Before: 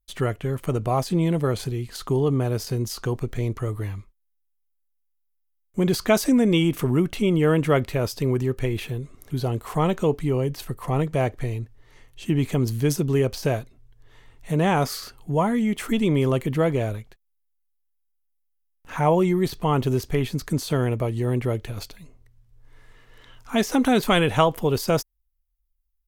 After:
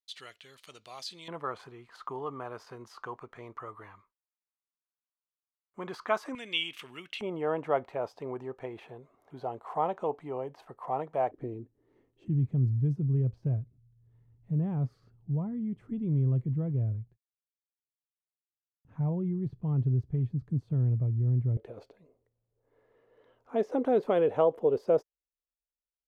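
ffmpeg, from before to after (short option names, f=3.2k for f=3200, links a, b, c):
-af "asetnsamples=n=441:p=0,asendcmd='1.28 bandpass f 1100;6.35 bandpass f 2900;7.21 bandpass f 790;11.31 bandpass f 320;12.28 bandpass f 120;21.57 bandpass f 490',bandpass=f=4.1k:t=q:w=2.6:csg=0"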